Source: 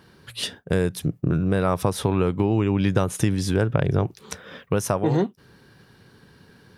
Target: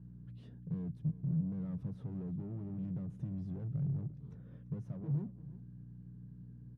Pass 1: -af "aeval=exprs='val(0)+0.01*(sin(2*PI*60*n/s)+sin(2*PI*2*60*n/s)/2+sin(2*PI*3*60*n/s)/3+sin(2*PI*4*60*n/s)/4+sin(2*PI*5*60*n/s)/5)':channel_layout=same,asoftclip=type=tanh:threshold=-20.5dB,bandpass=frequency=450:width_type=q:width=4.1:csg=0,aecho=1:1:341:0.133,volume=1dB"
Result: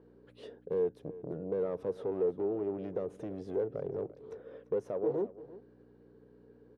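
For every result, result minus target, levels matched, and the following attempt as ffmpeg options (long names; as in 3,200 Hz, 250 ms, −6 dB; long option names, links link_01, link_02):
500 Hz band +19.0 dB; soft clipping: distortion −4 dB
-af "aeval=exprs='val(0)+0.01*(sin(2*PI*60*n/s)+sin(2*PI*2*60*n/s)/2+sin(2*PI*3*60*n/s)/3+sin(2*PI*4*60*n/s)/4+sin(2*PI*5*60*n/s)/5)':channel_layout=same,asoftclip=type=tanh:threshold=-20.5dB,bandpass=frequency=150:width_type=q:width=4.1:csg=0,aecho=1:1:341:0.133,volume=1dB"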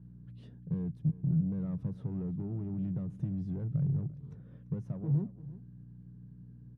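soft clipping: distortion −4 dB
-af "aeval=exprs='val(0)+0.01*(sin(2*PI*60*n/s)+sin(2*PI*2*60*n/s)/2+sin(2*PI*3*60*n/s)/3+sin(2*PI*4*60*n/s)/4+sin(2*PI*5*60*n/s)/5)':channel_layout=same,asoftclip=type=tanh:threshold=-28dB,bandpass=frequency=150:width_type=q:width=4.1:csg=0,aecho=1:1:341:0.133,volume=1dB"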